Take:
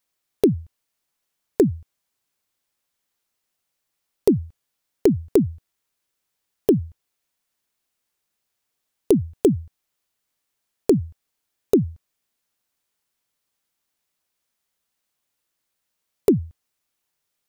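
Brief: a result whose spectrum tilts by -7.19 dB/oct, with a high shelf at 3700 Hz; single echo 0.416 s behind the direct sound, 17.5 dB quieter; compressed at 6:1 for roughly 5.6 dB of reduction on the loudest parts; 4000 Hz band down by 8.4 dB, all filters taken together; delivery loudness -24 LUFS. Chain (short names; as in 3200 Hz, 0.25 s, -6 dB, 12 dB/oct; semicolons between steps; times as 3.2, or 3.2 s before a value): high shelf 3700 Hz -6 dB; bell 4000 Hz -7 dB; compressor 6:1, threshold -17 dBFS; echo 0.416 s -17.5 dB; gain +3 dB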